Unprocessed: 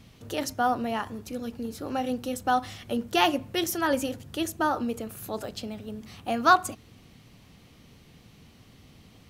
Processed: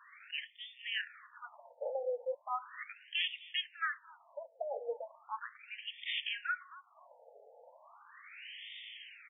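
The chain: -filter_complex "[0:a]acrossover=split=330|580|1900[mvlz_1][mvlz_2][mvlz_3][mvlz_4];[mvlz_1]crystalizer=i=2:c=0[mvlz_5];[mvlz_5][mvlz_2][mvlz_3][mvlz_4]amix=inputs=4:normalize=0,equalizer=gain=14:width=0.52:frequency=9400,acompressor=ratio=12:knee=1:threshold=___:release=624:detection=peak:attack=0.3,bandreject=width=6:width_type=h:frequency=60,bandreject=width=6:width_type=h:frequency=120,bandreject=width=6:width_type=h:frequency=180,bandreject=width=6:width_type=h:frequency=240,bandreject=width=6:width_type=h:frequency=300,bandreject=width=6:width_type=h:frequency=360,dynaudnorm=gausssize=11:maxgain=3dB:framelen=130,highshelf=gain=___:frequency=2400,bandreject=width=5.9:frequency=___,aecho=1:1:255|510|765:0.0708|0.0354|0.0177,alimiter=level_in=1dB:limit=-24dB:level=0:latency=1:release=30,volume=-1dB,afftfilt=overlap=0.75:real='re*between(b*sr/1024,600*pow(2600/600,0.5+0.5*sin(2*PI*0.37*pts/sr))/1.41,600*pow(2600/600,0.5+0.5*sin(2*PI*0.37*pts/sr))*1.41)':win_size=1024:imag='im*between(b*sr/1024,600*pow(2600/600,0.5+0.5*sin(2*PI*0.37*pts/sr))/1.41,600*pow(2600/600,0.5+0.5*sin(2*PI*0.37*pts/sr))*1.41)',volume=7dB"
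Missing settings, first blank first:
-33dB, 7.5, 770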